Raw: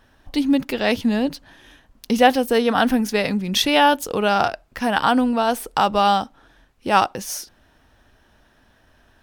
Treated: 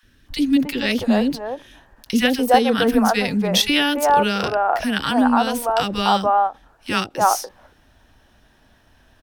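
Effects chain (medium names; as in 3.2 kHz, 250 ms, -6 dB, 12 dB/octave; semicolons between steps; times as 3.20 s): three bands offset in time highs, lows, mids 30/290 ms, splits 440/1400 Hz; endings held to a fixed fall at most 350 dB/s; trim +2.5 dB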